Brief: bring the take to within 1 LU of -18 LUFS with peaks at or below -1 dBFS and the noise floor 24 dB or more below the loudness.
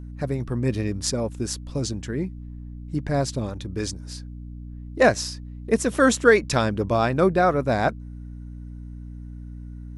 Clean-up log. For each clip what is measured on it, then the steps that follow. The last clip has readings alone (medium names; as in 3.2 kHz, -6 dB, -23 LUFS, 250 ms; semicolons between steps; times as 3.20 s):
hum 60 Hz; highest harmonic 300 Hz; hum level -35 dBFS; loudness -23.5 LUFS; peak level -2.0 dBFS; loudness target -18.0 LUFS
-> de-hum 60 Hz, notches 5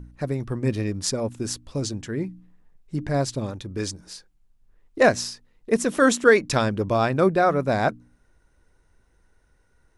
hum not found; loudness -23.5 LUFS; peak level -2.0 dBFS; loudness target -18.0 LUFS
-> trim +5.5 dB; peak limiter -1 dBFS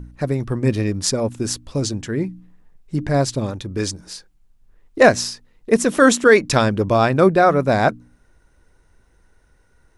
loudness -18.5 LUFS; peak level -1.0 dBFS; noise floor -58 dBFS